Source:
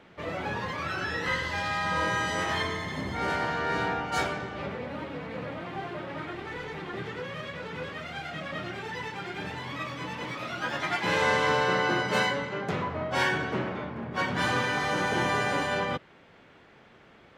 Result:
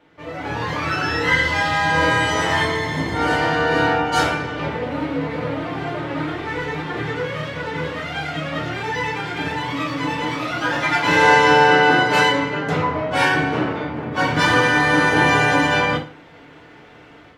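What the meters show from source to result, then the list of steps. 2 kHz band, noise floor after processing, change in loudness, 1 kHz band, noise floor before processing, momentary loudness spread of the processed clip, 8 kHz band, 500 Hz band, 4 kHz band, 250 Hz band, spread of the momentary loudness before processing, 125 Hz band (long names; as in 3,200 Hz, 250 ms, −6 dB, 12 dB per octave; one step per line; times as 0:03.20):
+11.5 dB, −45 dBFS, +11.0 dB, +11.0 dB, −55 dBFS, 12 LU, +9.0 dB, +10.0 dB, +10.0 dB, +12.0 dB, 11 LU, +10.5 dB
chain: automatic gain control gain up to 11.5 dB
feedback delay network reverb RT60 0.4 s, low-frequency decay 0.95×, high-frequency decay 0.85×, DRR −2.5 dB
level −5.5 dB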